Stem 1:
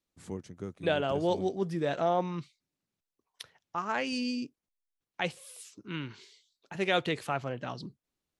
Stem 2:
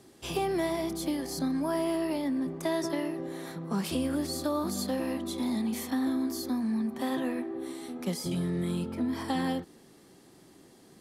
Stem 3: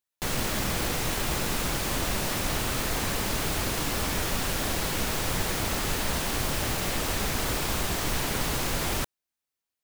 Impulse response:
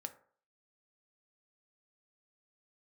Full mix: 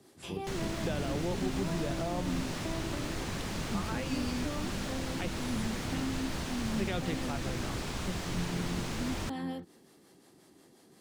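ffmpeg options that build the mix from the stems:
-filter_complex "[0:a]volume=1dB[link_01];[1:a]acrossover=split=4200[link_02][link_03];[link_03]acompressor=threshold=-49dB:ratio=4:attack=1:release=60[link_04];[link_02][link_04]amix=inputs=2:normalize=0,acrossover=split=420[link_05][link_06];[link_05]aeval=exprs='val(0)*(1-0.5/2+0.5/2*cos(2*PI*5.6*n/s))':channel_layout=same[link_07];[link_06]aeval=exprs='val(0)*(1-0.5/2-0.5/2*cos(2*PI*5.6*n/s))':channel_layout=same[link_08];[link_07][link_08]amix=inputs=2:normalize=0,volume=-1dB[link_09];[2:a]acrossover=split=8700[link_10][link_11];[link_11]acompressor=threshold=-51dB:ratio=4:attack=1:release=60[link_12];[link_10][link_12]amix=inputs=2:normalize=0,adelay=250,volume=-1.5dB[link_13];[link_01][link_09][link_13]amix=inputs=3:normalize=0,lowshelf=frequency=87:gain=-7.5,acrossover=split=260[link_14][link_15];[link_15]acompressor=threshold=-44dB:ratio=2[link_16];[link_14][link_16]amix=inputs=2:normalize=0"

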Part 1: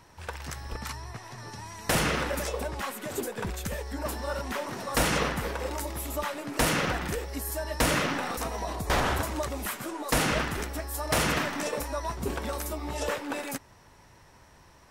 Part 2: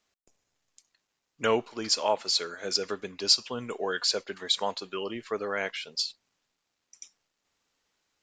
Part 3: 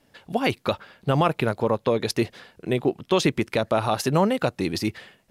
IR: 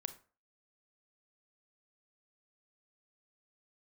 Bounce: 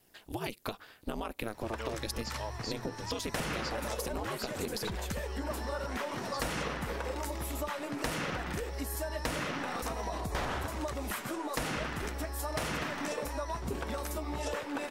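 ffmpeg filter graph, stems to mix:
-filter_complex "[0:a]highshelf=frequency=7800:gain=-5.5,adelay=1450,volume=0.5dB[link_01];[1:a]adelay=350,volume=-14dB[link_02];[2:a]aemphasis=mode=production:type=50fm,acompressor=threshold=-23dB:ratio=3,aeval=exprs='val(0)*sin(2*PI*110*n/s)':channel_layout=same,volume=-4dB[link_03];[link_01][link_02][link_03]amix=inputs=3:normalize=0,acompressor=threshold=-32dB:ratio=6"

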